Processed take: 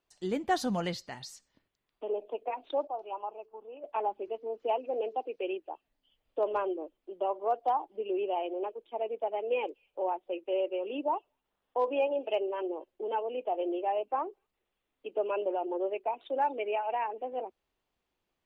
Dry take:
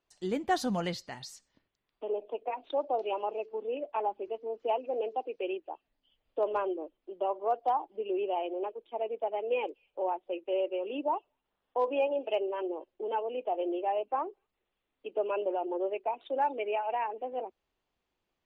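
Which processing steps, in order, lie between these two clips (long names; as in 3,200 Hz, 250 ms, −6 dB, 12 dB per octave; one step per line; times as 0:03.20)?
0:02.87–0:03.84: octave-band graphic EQ 125/250/500/1,000/2,000/4,000/8,000 Hz −6/−11/−10/+4/−11/−11/−9 dB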